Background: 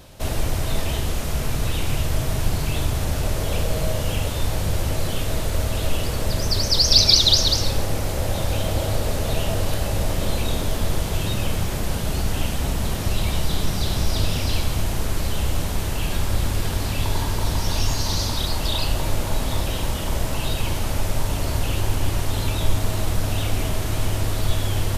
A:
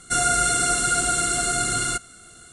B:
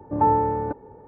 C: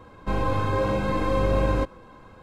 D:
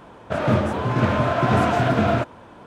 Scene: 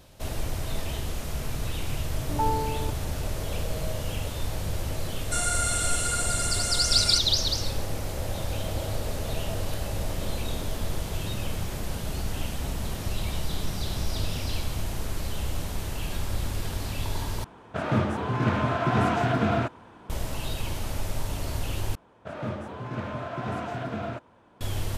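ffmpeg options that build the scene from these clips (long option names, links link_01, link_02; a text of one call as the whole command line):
ffmpeg -i bed.wav -i cue0.wav -i cue1.wav -i cue2.wav -i cue3.wav -filter_complex "[4:a]asplit=2[link_01][link_02];[0:a]volume=-7.5dB[link_03];[1:a]highpass=frequency=1400:poles=1[link_04];[link_01]equalizer=frequency=570:width_type=o:width=0.24:gain=-7.5[link_05];[link_03]asplit=3[link_06][link_07][link_08];[link_06]atrim=end=17.444[link_09];[link_05]atrim=end=2.66,asetpts=PTS-STARTPTS,volume=-4.5dB[link_10];[link_07]atrim=start=20.096:end=21.954[link_11];[link_02]atrim=end=2.66,asetpts=PTS-STARTPTS,volume=-13.5dB[link_12];[link_08]atrim=start=24.606[link_13];[2:a]atrim=end=1.07,asetpts=PTS-STARTPTS,volume=-8dB,afade=type=in:duration=0.004:curve=hsin,afade=type=out:start_time=1.066:duration=0.004:curve=hsin,adelay=2180[link_14];[link_04]atrim=end=2.52,asetpts=PTS-STARTPTS,volume=-5.5dB,afade=type=in:duration=0.004:curve=hsin,afade=type=out:start_time=2.516:duration=0.004:curve=hsin,adelay=229761S[link_15];[link_09][link_10]acrossfade=duration=0.004:curve1=hsin:curve2=hsin[link_16];[link_16][link_11]acrossfade=duration=0.004:curve1=hsin:curve2=hsin[link_17];[link_17][link_12]acrossfade=duration=0.004:curve1=hsin:curve2=hsin[link_18];[link_18][link_13]acrossfade=duration=0.004:curve1=hsin:curve2=hsin[link_19];[link_19][link_14][link_15]amix=inputs=3:normalize=0" out.wav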